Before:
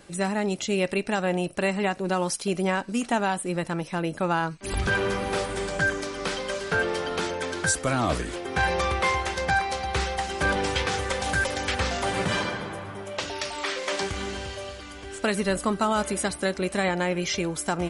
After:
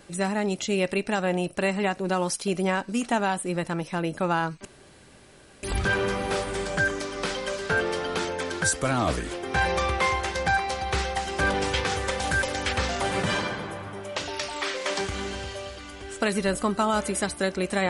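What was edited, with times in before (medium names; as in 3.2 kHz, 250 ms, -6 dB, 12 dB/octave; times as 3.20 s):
4.65 s: insert room tone 0.98 s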